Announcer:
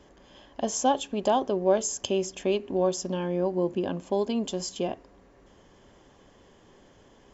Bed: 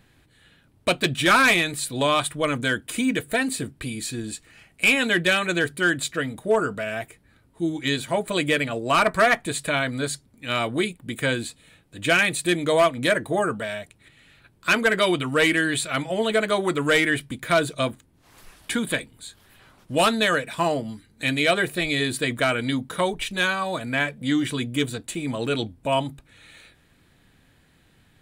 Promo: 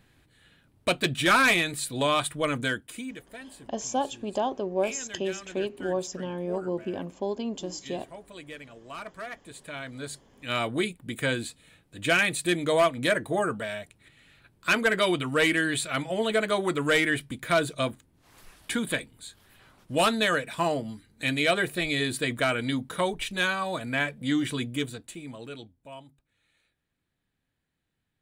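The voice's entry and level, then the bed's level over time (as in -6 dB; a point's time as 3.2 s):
3.10 s, -4.0 dB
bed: 2.65 s -3.5 dB
3.29 s -20.5 dB
9.33 s -20.5 dB
10.55 s -3.5 dB
24.62 s -3.5 dB
26.01 s -22.5 dB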